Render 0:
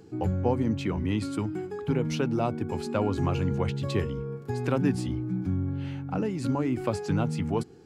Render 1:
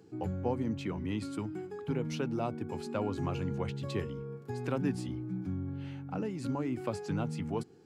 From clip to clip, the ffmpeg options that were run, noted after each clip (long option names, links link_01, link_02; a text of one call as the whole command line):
ffmpeg -i in.wav -af "highpass=91,volume=-6.5dB" out.wav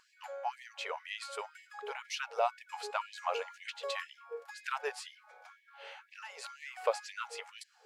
ffmpeg -i in.wav -af "highshelf=frequency=7900:gain=-7,afftfilt=real='re*gte(b*sr/1024,400*pow(1700/400,0.5+0.5*sin(2*PI*2*pts/sr)))':imag='im*gte(b*sr/1024,400*pow(1700/400,0.5+0.5*sin(2*PI*2*pts/sr)))':win_size=1024:overlap=0.75,volume=7dB" out.wav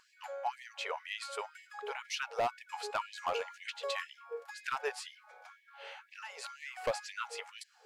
ffmpeg -i in.wav -af "asoftclip=type=hard:threshold=-27dB,volume=1dB" out.wav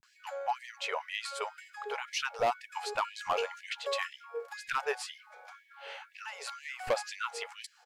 ffmpeg -i in.wav -filter_complex "[0:a]acrossover=split=200[link_01][link_02];[link_02]adelay=30[link_03];[link_01][link_03]amix=inputs=2:normalize=0,volume=3.5dB" out.wav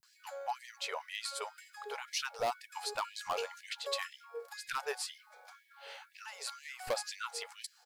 ffmpeg -i in.wav -af "aexciter=amount=2.4:drive=4.9:freq=3800,volume=-5dB" out.wav